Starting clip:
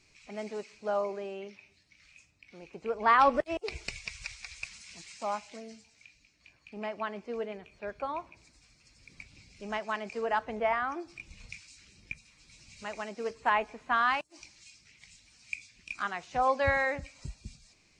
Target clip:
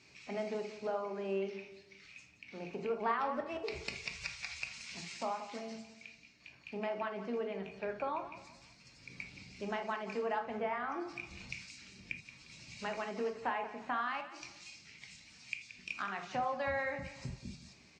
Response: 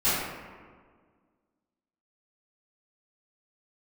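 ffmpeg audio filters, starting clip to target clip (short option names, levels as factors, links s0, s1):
-filter_complex "[0:a]acompressor=threshold=0.01:ratio=4,highpass=110,lowpass=5900,aecho=1:1:176|352|528:0.2|0.0698|0.0244,asplit=2[s0][s1];[1:a]atrim=start_sample=2205,atrim=end_sample=3969,lowshelf=f=350:g=6[s2];[s1][s2]afir=irnorm=-1:irlink=0,volume=0.141[s3];[s0][s3]amix=inputs=2:normalize=0,volume=1.33"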